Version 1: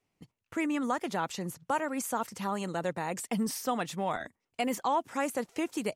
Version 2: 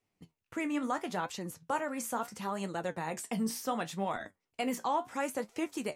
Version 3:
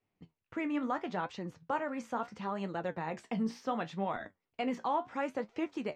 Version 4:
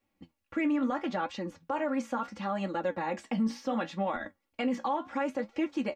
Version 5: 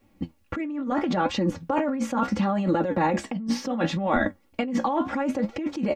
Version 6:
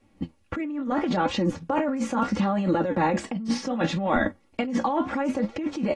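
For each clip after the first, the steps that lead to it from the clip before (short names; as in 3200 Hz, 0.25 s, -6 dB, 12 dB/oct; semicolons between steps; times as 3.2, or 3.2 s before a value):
flange 0.72 Hz, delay 8.2 ms, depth 9.8 ms, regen +58%; gain +1.5 dB
air absorption 200 m
comb 3.6 ms, depth 88%; limiter -24.5 dBFS, peak gain reduction 8.5 dB; gain +3 dB
low shelf 470 Hz +10 dB; negative-ratio compressor -31 dBFS, ratio -1; gain +6 dB
AAC 32 kbps 24000 Hz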